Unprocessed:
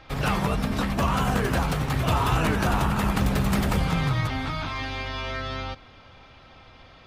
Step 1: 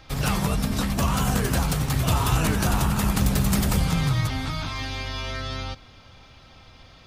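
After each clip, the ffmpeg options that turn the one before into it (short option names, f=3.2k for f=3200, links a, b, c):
-af "bass=f=250:g=5,treble=f=4k:g=12,volume=-2.5dB"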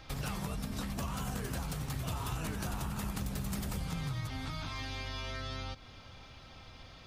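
-af "acompressor=threshold=-35dB:ratio=3,volume=-3dB"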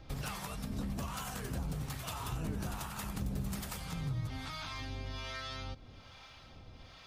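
-filter_complex "[0:a]acrossover=split=630[a][b];[a]aeval=exprs='val(0)*(1-0.7/2+0.7/2*cos(2*PI*1.2*n/s))':c=same[c];[b]aeval=exprs='val(0)*(1-0.7/2-0.7/2*cos(2*PI*1.2*n/s))':c=same[d];[c][d]amix=inputs=2:normalize=0,volume=1.5dB"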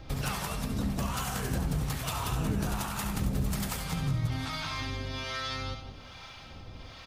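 -af "aecho=1:1:69|177:0.376|0.316,volume=6.5dB"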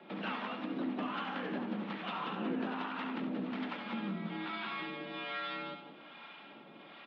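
-af "highpass=f=160:t=q:w=0.5412,highpass=f=160:t=q:w=1.307,lowpass=f=3.3k:t=q:w=0.5176,lowpass=f=3.3k:t=q:w=0.7071,lowpass=f=3.3k:t=q:w=1.932,afreqshift=56,volume=-2.5dB"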